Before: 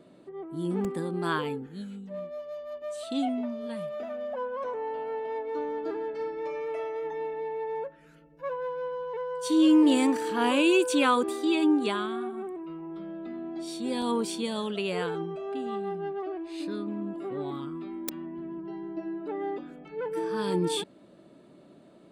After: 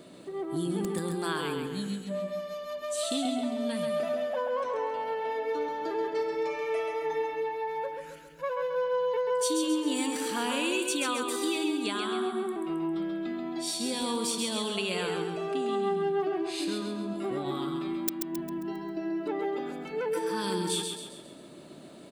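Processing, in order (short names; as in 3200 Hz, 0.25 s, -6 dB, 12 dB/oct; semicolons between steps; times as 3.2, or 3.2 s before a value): high shelf 2800 Hz +12 dB; compressor 6:1, threshold -33 dBFS, peak gain reduction 15.5 dB; on a send: feedback echo 0.134 s, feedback 45%, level -5 dB; on the sum: gain +4 dB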